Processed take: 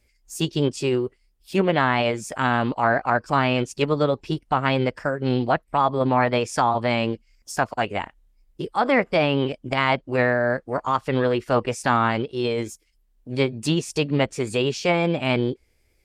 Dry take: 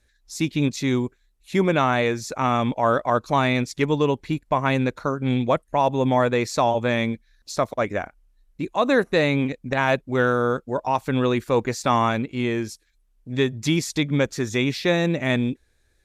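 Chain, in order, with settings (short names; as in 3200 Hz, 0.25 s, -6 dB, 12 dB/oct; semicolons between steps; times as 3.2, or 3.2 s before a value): treble ducked by the level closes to 2800 Hz, closed at -15 dBFS; formant shift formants +4 st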